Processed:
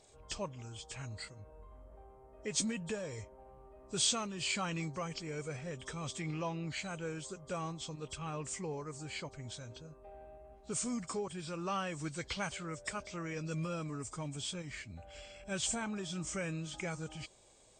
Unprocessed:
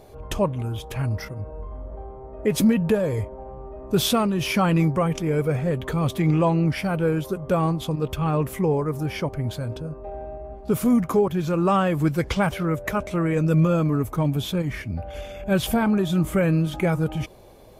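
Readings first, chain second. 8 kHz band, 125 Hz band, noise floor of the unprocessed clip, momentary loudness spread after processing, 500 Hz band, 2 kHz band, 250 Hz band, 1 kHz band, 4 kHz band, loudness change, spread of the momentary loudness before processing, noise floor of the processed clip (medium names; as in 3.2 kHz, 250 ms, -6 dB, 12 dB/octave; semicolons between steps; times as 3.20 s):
-1.5 dB, -20.0 dB, -40 dBFS, 18 LU, -18.5 dB, -11.0 dB, -19.5 dB, -15.5 dB, -7.0 dB, -16.0 dB, 15 LU, -58 dBFS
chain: knee-point frequency compression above 3.1 kHz 1.5:1; pre-emphasis filter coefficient 0.9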